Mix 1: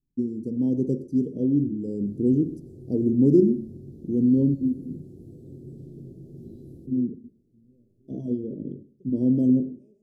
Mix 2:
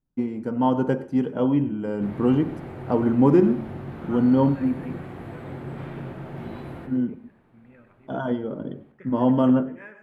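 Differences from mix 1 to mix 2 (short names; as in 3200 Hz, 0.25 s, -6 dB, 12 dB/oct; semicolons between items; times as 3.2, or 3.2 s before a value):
second voice +5.5 dB; background +6.0 dB; master: remove elliptic band-stop 390–5500 Hz, stop band 80 dB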